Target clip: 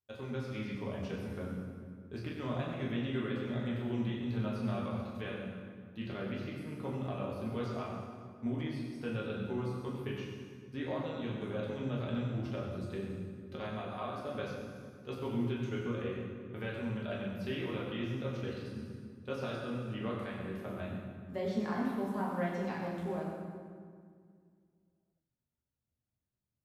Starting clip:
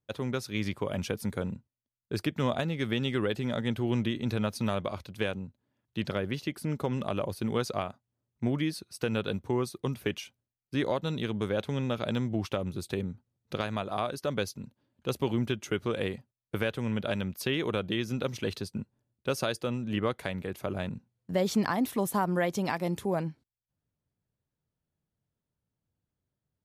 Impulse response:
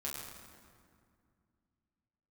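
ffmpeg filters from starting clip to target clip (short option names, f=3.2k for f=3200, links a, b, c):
-filter_complex "[0:a]asplit=3[a][b][c];[a]afade=t=out:st=15.81:d=0.02[d];[b]highshelf=f=5.4k:g=-11,afade=t=in:st=15.81:d=0.02,afade=t=out:st=16.6:d=0.02[e];[c]afade=t=in:st=16.6:d=0.02[f];[d][e][f]amix=inputs=3:normalize=0[g];[1:a]atrim=start_sample=2205,asetrate=48510,aresample=44100[h];[g][h]afir=irnorm=-1:irlink=0,asettb=1/sr,asplit=3[i][j][k];[i]atrim=end=21.954[l];[j]atrim=start=21.95:end=23.24,asetpts=PTS-STARTPTS,afade=t=in:d=0.004:c=qsin,afade=t=out:st=1.286:d=0.004:c=qsin,aeval=exprs='sgn(val(0))*max(abs(val(0))-0.00316,0)':c=same[m];[k]atrim=start=23.236[n];[l][m]acrossfade=d=0.004:c1=hsin:c2=qsin[o];[o][n]acrossfade=d=0.004:c1=qsin:c2=hsin,acrossover=split=4100[p][q];[q]acompressor=threshold=-59dB:ratio=4:attack=1:release=60[r];[p][r]amix=inputs=2:normalize=0,volume=-7.5dB"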